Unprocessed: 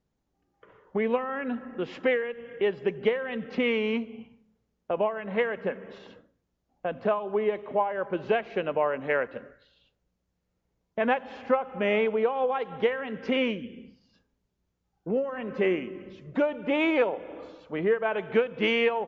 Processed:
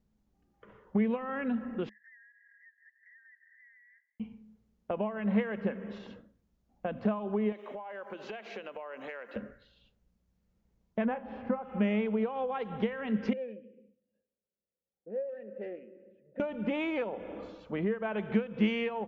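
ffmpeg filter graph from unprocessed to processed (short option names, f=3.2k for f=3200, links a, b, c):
-filter_complex "[0:a]asettb=1/sr,asplit=3[a][b][c];[a]atrim=end=1.894[d];[b]atrim=start=1.89:end=4.2,asetpts=PTS-STARTPTS,afade=t=in:d=0.004:c=qsin,afade=t=out:st=2.306:d=0.004:c=qsin,asuperpass=centerf=1800:order=12:qfactor=4.8,acompressor=threshold=-57dB:ratio=4:attack=3.2:release=140:knee=1:detection=peak[e];[c]atrim=start=4.196[f];[d][e]acrossfade=d=0.004:c1=hsin:c2=qsin[g];[g][f]acrossfade=d=0.004:c1=qsin:c2=hsin,asettb=1/sr,asplit=3[h][i][j];[h]atrim=end=7.524[k];[i]atrim=start=7.52:end=9.36,asetpts=PTS-STARTPTS,afade=t=in:d=0.004:c=qsin,afade=t=out:st=1.836:d=0.004:c=qsin,highpass=430,highshelf=f=4k:g=11,acompressor=threshold=-36dB:ratio=16:attack=3.2:release=140:knee=1:detection=peak[l];[j]atrim=start=9.356[m];[k][l]acrossfade=d=0.004:c1=hsin:c2=qsin[n];[n][m]acrossfade=d=0.004:c1=qsin:c2=hsin,asettb=1/sr,asplit=3[o][p][q];[o]atrim=end=11.054[r];[p]atrim=start=11.05:end=11.63,asetpts=PTS-STARTPTS,afade=t=in:d=0.004:c=qsin,afade=t=out:st=0.576:d=0.004:c=qsin,lowpass=f=1.6k:p=1,aemphasis=mode=reproduction:type=75fm,asplit=2[s][t];[t]adelay=35,volume=-12dB[u];[s][u]amix=inputs=2:normalize=0,atrim=end_sample=25578[v];[q]atrim=start=11.626[w];[r][v]acrossfade=d=0.004:c1=hsin:c2=qsin[x];[x][w]acrossfade=d=0.004:c1=qsin:c2=hsin,asettb=1/sr,asplit=3[y][z][aa];[y]atrim=end=13.334[ab];[z]atrim=start=13.33:end=16.4,asetpts=PTS-STARTPTS,afade=t=in:d=0.004:c=qsin,afade=t=out:st=3.066:d=0.004:c=qsin,aeval=exprs='clip(val(0),-1,0.0376)':c=same,adynamicsmooth=sensitivity=1:basefreq=1.3k,asplit=3[ac][ad][ae];[ac]bandpass=f=530:t=q:w=8,volume=0dB[af];[ad]bandpass=f=1.84k:t=q:w=8,volume=-6dB[ag];[ae]bandpass=f=2.48k:t=q:w=8,volume=-9dB[ah];[af][ag][ah]amix=inputs=3:normalize=0[ai];[aa]atrim=start=16.396[aj];[ab][ai]acrossfade=d=0.004:c1=hsin:c2=qsin[ak];[ak][aj]acrossfade=d=0.004:c1=qsin:c2=hsin,lowshelf=f=100:g=10.5,acompressor=threshold=-28dB:ratio=6,equalizer=f=210:t=o:w=0.21:g=13,volume=-2dB"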